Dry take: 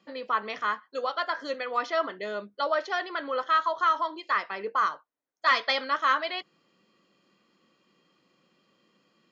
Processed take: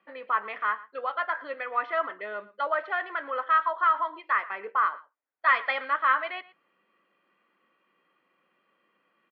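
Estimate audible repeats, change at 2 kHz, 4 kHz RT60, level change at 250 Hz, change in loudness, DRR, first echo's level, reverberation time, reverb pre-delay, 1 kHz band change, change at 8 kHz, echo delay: 1, +1.5 dB, no reverb audible, −8.5 dB, +0.5 dB, no reverb audible, −19.5 dB, no reverb audible, no reverb audible, +1.0 dB, can't be measured, 115 ms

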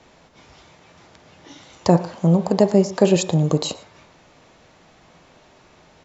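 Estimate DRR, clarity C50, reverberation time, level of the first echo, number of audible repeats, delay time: 8.5 dB, 13.0 dB, 0.55 s, −20.5 dB, 1, 115 ms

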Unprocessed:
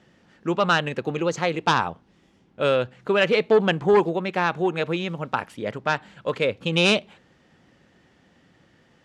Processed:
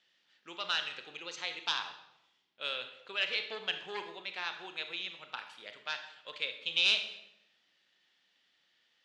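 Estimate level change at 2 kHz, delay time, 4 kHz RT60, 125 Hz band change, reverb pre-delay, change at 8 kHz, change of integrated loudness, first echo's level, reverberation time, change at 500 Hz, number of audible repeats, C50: −10.0 dB, no echo audible, 0.65 s, −35.0 dB, 27 ms, can't be measured, −11.5 dB, no echo audible, 0.80 s, −25.5 dB, no echo audible, 9.0 dB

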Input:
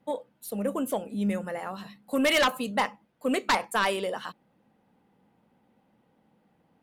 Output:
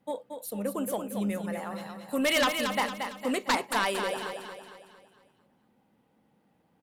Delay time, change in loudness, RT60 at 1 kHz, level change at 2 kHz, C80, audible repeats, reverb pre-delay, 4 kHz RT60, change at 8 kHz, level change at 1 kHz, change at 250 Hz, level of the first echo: 228 ms, −1.5 dB, no reverb audible, −1.5 dB, no reverb audible, 5, no reverb audible, no reverb audible, +1.5 dB, −1.5 dB, −2.0 dB, −6.5 dB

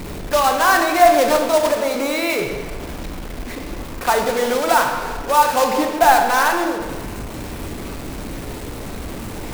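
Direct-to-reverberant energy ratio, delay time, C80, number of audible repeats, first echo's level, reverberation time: 3.0 dB, no echo audible, 6.5 dB, no echo audible, no echo audible, 1.6 s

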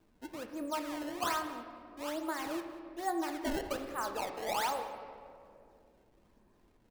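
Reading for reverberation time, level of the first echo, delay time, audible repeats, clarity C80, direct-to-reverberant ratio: 2.4 s, −18.0 dB, 189 ms, 1, 8.5 dB, 5.0 dB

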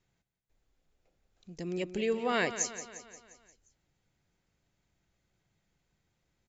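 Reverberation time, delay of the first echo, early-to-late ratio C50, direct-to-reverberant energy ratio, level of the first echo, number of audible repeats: no reverb audible, 176 ms, no reverb audible, no reverb audible, −12.0 dB, 5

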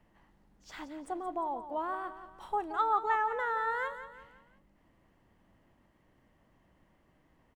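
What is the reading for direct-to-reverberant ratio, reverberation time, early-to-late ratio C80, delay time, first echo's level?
no reverb audible, no reverb audible, no reverb audible, 175 ms, −11.5 dB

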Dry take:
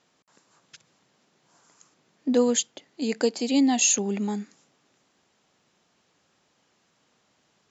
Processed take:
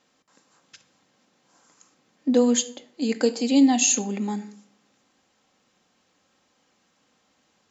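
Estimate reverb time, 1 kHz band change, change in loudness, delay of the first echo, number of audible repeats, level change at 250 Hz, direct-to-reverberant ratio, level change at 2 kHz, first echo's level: 0.60 s, +2.0 dB, +2.0 dB, no echo audible, no echo audible, +3.5 dB, 6.5 dB, +0.5 dB, no echo audible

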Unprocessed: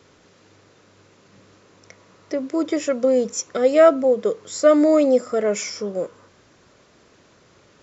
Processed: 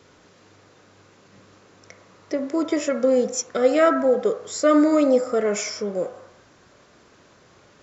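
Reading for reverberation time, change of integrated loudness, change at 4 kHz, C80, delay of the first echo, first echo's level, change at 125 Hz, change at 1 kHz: 0.70 s, −2.0 dB, 0.0 dB, 10.5 dB, no echo audible, no echo audible, can't be measured, 0.0 dB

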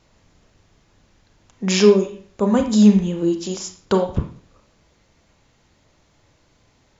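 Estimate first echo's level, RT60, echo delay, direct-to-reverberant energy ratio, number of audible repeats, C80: no echo audible, 0.50 s, no echo audible, 4.5 dB, no echo audible, 12.5 dB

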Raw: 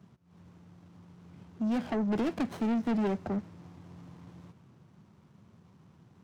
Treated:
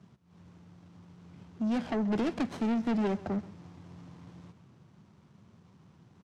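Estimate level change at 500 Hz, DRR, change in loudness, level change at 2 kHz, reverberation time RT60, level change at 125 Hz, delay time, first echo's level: 0.0 dB, no reverb audible, 0.0 dB, +1.0 dB, no reverb audible, 0.0 dB, 131 ms, −19.5 dB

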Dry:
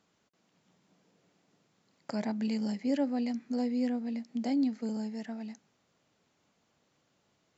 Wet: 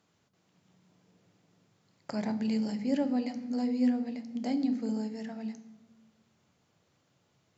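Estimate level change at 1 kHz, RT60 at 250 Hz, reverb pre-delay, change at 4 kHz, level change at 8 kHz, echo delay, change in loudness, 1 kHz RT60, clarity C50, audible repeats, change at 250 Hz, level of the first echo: +0.5 dB, 1.4 s, 3 ms, +0.5 dB, can't be measured, no echo audible, +1.0 dB, 0.95 s, 13.0 dB, no echo audible, +1.5 dB, no echo audible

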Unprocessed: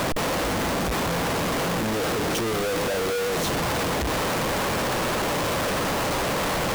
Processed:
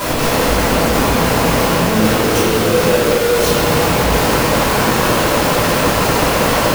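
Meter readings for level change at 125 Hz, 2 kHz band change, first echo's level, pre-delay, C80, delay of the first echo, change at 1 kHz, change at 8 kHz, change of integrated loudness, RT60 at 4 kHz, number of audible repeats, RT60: +12.0 dB, +10.0 dB, no echo audible, 3 ms, −0.5 dB, no echo audible, +10.5 dB, +10.5 dB, +11.0 dB, 1.2 s, no echo audible, 2.3 s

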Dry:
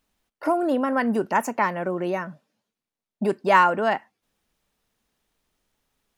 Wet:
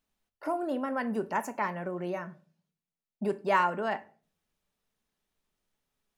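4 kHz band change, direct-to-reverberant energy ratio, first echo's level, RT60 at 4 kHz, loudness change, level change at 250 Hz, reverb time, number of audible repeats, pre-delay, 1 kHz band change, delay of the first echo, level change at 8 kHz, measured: −9.0 dB, 10.0 dB, no echo audible, 0.25 s, −8.5 dB, −8.5 dB, 0.40 s, no echo audible, 5 ms, −8.5 dB, no echo audible, can't be measured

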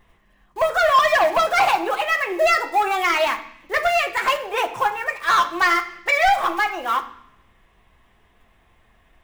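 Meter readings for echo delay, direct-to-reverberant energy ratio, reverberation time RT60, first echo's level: no echo audible, 3.0 dB, 0.65 s, no echo audible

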